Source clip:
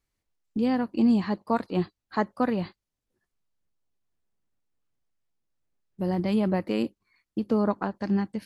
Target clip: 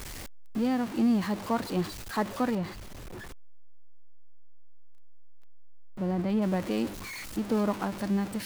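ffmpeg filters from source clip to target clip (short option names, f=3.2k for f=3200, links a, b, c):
-filter_complex "[0:a]aeval=exprs='val(0)+0.5*0.0355*sgn(val(0))':c=same,asettb=1/sr,asplit=3[a][b][c];[a]atrim=end=2.554[d];[b]atrim=start=2.55:end=6.42,asetpts=PTS-STARTPTS,afade=t=in:d=0.004:c=qsin,afade=t=out:st=3.866:d=0.004:c=qsin,highshelf=f=2.9k:g=-10[e];[c]atrim=start=6.416[f];[d][e]acrossfade=d=0.004:c1=hsin:c2=qsin[g];[g][f]acrossfade=d=0.004:c1=qsin:c2=hsin,volume=-4.5dB"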